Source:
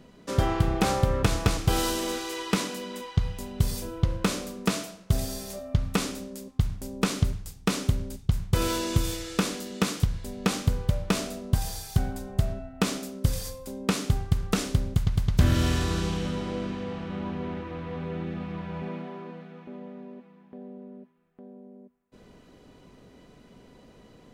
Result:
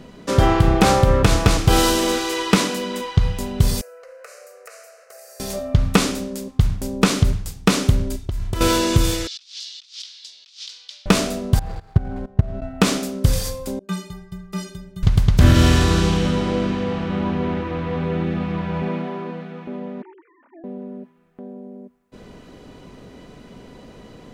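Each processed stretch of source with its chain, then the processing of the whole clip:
3.81–5.40 s: elliptic high-pass 490 Hz, stop band 50 dB + compression 3:1, threshold -52 dBFS + static phaser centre 930 Hz, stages 6
8.07–8.61 s: comb 3 ms, depth 57% + compression 16:1, threshold -30 dBFS
9.27–11.06 s: Butterworth band-pass 4.3 kHz, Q 1.8 + compressor with a negative ratio -47 dBFS, ratio -0.5
11.59–12.62 s: median filter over 15 samples + low-pass 2.4 kHz 6 dB/octave + level held to a coarse grid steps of 19 dB
13.79–15.03 s: inharmonic resonator 180 Hz, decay 0.51 s, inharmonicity 0.03 + three bands expanded up and down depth 40%
20.02–20.64 s: formants replaced by sine waves + band-pass filter 1.6 kHz, Q 1.2 + comb 3.4 ms, depth 42%
whole clip: treble shelf 9.5 kHz -4.5 dB; loudness maximiser +11.5 dB; trim -1 dB

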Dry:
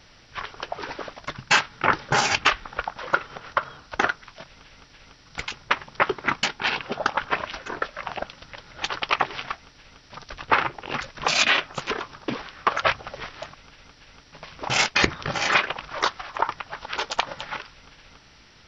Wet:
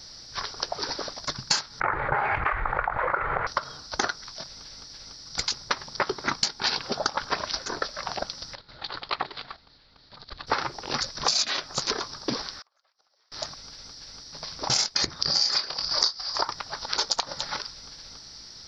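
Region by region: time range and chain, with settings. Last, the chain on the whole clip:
1.80–3.47 s: elliptic low-pass 2.2 kHz, stop band 60 dB + peaking EQ 230 Hz -15 dB 1.1 oct + level flattener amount 70%
8.55–10.47 s: steep low-pass 4.3 kHz 48 dB/octave + level held to a coarse grid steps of 12 dB
12.59–13.32 s: band-pass 600–7500 Hz + compression 10:1, threshold -36 dBFS + inverted gate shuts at -35 dBFS, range -30 dB
15.21–16.45 s: peaking EQ 4.8 kHz +14.5 dB 0.39 oct + doubling 26 ms -9 dB
whole clip: resonant high shelf 3.6 kHz +9 dB, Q 3; compression 10:1, threshold -21 dBFS

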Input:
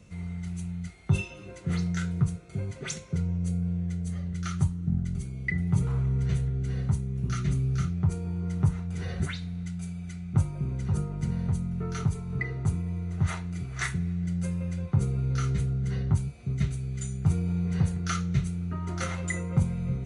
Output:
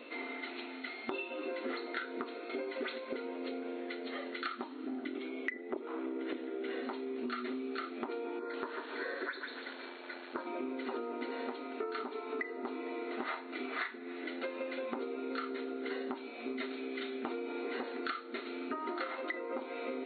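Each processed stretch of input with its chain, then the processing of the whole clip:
5.06–6.83 s: Butterworth band-stop 4.7 kHz, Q 3.2 + transformer saturation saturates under 230 Hz
8.39–10.47 s: static phaser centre 780 Hz, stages 6 + comb 1.2 ms, depth 42% + bit-crushed delay 144 ms, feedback 35%, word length 8-bit, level -8 dB
whole clip: FFT band-pass 230–4400 Hz; dynamic bell 3 kHz, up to -6 dB, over -52 dBFS, Q 1; compression 12:1, threshold -47 dBFS; trim +12 dB

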